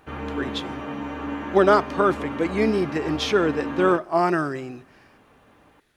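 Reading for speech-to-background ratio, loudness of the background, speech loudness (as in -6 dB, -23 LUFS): 9.0 dB, -31.5 LUFS, -22.5 LUFS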